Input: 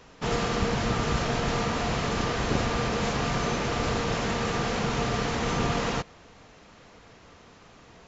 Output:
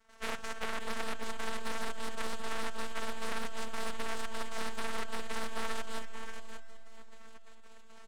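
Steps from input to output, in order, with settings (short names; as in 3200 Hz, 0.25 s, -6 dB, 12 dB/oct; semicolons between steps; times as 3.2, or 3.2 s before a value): median filter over 25 samples; LPF 3600 Hz; bell 980 Hz +8 dB 0.78 oct; spectral gate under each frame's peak -10 dB weak; compressor, threshold -39 dBFS, peak gain reduction 10 dB; step gate ".xxx.x.xx" 173 bpm -12 dB; noise vocoder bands 3; half-wave rectifier; robotiser 224 Hz; echo 0.581 s -8.5 dB; Schroeder reverb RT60 3.9 s, combs from 30 ms, DRR 15.5 dB; Doppler distortion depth 0.76 ms; gain +11.5 dB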